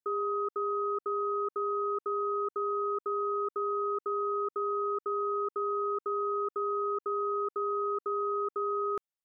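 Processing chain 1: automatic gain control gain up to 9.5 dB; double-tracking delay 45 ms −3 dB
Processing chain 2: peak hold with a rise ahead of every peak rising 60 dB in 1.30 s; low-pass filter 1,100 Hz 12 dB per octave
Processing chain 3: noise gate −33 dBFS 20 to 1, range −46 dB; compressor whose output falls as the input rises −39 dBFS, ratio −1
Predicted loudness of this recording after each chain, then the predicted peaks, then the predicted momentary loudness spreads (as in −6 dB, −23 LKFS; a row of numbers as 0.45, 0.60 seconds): −22.0, −33.5, −39.5 LKFS; −15.0, −25.5, −27.5 dBFS; 1, 0, 1 LU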